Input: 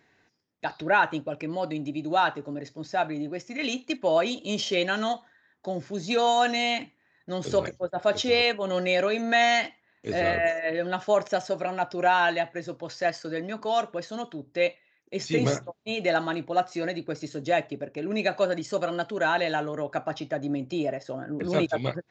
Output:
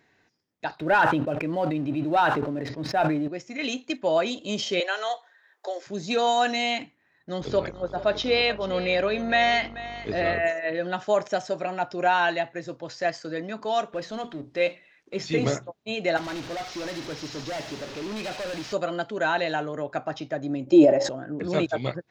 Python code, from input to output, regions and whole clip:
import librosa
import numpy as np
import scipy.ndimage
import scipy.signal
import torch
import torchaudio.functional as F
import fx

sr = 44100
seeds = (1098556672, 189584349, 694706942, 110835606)

y = fx.chain(x, sr, fx.air_absorb(metres=270.0),
    fx.leveller(passes=1),
    fx.sustainer(db_per_s=35.0), at=(0.75, 3.28))
y = fx.chain(y, sr, fx.steep_highpass(hz=410.0, slope=36),
    fx.band_squash(depth_pct=40), at=(4.8, 5.87))
y = fx.lowpass(y, sr, hz=5300.0, slope=24, at=(7.4, 10.34), fade=0.02)
y = fx.echo_single(y, sr, ms=436, db=-15.5, at=(7.4, 10.34), fade=0.02)
y = fx.dmg_buzz(y, sr, base_hz=50.0, harmonics=28, level_db=-45.0, tilt_db=-4, odd_only=False, at=(7.4, 10.34), fade=0.02)
y = fx.chain(y, sr, fx.law_mismatch(coded='mu'),
    fx.lowpass(hz=5700.0, slope=12),
    fx.hum_notches(base_hz=60, count=6), at=(13.92, 15.48))
y = fx.chain(y, sr, fx.delta_mod(bps=32000, step_db=-33.5),
    fx.clip_hard(threshold_db=-30.0),
    fx.echo_wet_highpass(ms=73, feedback_pct=82, hz=2900.0, wet_db=-3.0), at=(16.17, 18.73))
y = fx.chain(y, sr, fx.high_shelf(hz=6400.0, db=4.5),
    fx.small_body(hz=(340.0, 560.0, 820.0), ring_ms=55, db=17),
    fx.sustainer(db_per_s=60.0), at=(20.67, 21.09))